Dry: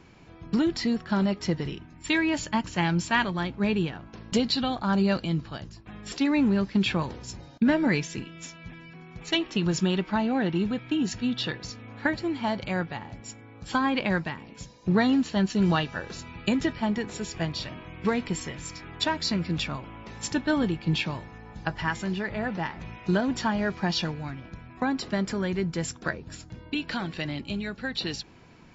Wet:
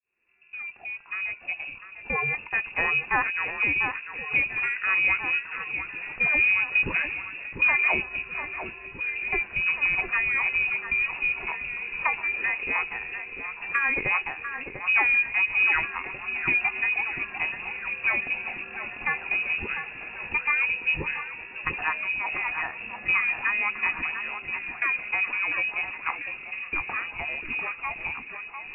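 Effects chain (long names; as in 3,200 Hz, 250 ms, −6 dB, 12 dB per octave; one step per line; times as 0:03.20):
fade in at the beginning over 2.94 s
voice inversion scrambler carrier 2,700 Hz
delay that swaps between a low-pass and a high-pass 695 ms, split 1,900 Hz, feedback 72%, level −7 dB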